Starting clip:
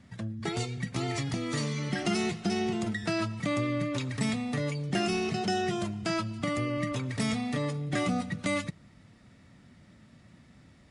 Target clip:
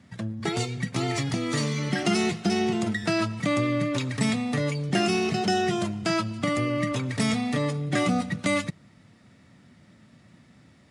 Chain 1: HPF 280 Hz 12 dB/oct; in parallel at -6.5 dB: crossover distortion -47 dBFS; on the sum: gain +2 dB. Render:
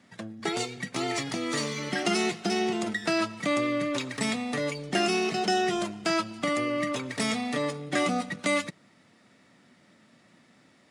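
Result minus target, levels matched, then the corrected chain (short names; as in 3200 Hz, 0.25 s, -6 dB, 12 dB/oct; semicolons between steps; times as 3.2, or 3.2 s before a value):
125 Hz band -9.0 dB
HPF 92 Hz 12 dB/oct; in parallel at -6.5 dB: crossover distortion -47 dBFS; on the sum: gain +2 dB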